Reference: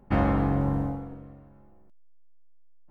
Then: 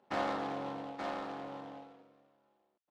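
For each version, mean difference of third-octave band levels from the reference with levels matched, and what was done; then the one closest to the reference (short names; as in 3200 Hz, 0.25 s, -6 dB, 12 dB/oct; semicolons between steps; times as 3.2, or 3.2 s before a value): 12.5 dB: HPF 480 Hz 12 dB/oct; air absorption 91 m; on a send: echo 0.878 s -5 dB; on the sum: noise-modulated delay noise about 2000 Hz, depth 0.035 ms; gain -4.5 dB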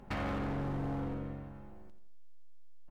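8.5 dB: compressor 16:1, threshold -32 dBFS, peak gain reduction 14.5 dB; bell 3600 Hz +10 dB 2.7 oct; feedback echo 86 ms, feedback 41%, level -12 dB; overloaded stage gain 34.5 dB; gain +2 dB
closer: second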